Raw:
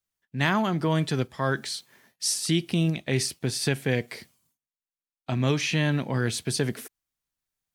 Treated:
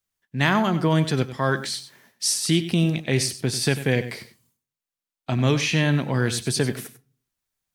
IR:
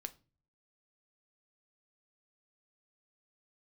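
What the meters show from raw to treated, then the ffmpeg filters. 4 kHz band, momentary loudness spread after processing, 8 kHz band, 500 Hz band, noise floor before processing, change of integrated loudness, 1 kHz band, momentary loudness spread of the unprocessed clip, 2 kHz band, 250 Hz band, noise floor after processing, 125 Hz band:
+3.5 dB, 12 LU, +3.5 dB, +3.5 dB, under -85 dBFS, +4.0 dB, +3.5 dB, 12 LU, +3.5 dB, +4.0 dB, under -85 dBFS, +4.0 dB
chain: -filter_complex "[0:a]asplit=2[a][b];[1:a]atrim=start_sample=2205,adelay=95[c];[b][c]afir=irnorm=-1:irlink=0,volume=-9.5dB[d];[a][d]amix=inputs=2:normalize=0,volume=3.5dB"

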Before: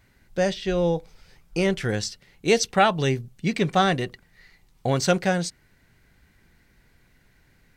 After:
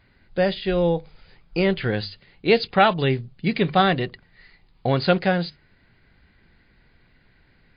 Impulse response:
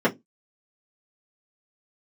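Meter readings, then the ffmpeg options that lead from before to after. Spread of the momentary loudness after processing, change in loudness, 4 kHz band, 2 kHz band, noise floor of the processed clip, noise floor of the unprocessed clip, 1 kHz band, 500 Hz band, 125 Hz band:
12 LU, +2.0 dB, +1.5 dB, +2.0 dB, -60 dBFS, -61 dBFS, +2.0 dB, +2.0 dB, +1.5 dB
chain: -af "bandreject=f=50:t=h:w=6,bandreject=f=100:t=h:w=6,bandreject=f=150:t=h:w=6,volume=2.5dB" -ar 11025 -c:a libmp3lame -b:a 32k

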